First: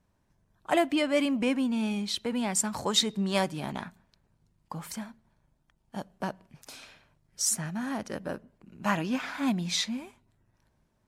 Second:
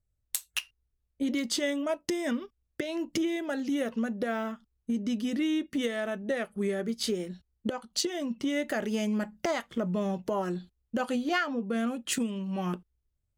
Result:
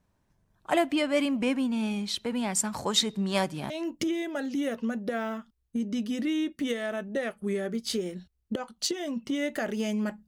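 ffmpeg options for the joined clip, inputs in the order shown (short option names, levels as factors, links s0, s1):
-filter_complex "[0:a]apad=whole_dur=10.27,atrim=end=10.27,atrim=end=3.702[s0];[1:a]atrim=start=2.838:end=9.41[s1];[s0][s1]acrossfade=d=0.004:c1=hsin:c2=hsin"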